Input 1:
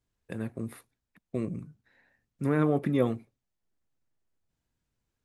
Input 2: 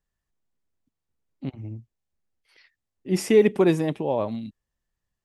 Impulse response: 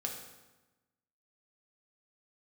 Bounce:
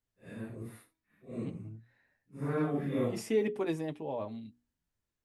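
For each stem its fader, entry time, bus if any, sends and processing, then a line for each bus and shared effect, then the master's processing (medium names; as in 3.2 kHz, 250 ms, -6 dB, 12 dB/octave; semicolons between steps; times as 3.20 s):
-6.0 dB, 0.00 s, no send, phase randomisation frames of 200 ms; de-hum 321.4 Hz, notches 4
-10.5 dB, 0.00 s, no send, hum notches 60/120/180/240/300/360/420 Hz; comb of notches 180 Hz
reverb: none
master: none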